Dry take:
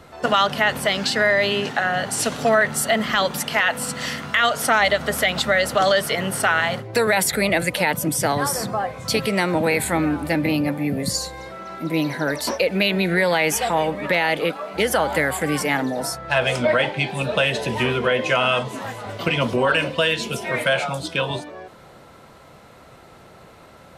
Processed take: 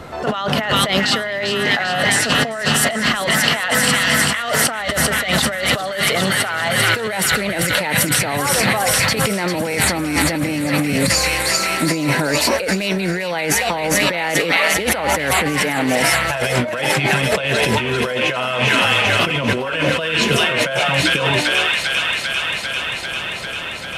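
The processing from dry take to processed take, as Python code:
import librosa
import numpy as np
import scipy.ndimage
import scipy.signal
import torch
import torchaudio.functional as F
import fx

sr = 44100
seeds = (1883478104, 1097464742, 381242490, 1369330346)

y = fx.high_shelf(x, sr, hz=3900.0, db=-5.0)
y = fx.echo_wet_highpass(y, sr, ms=396, feedback_pct=80, hz=2000.0, wet_db=-3)
y = fx.over_compress(y, sr, threshold_db=-26.0, ratio=-1.0)
y = y * librosa.db_to_amplitude(7.5)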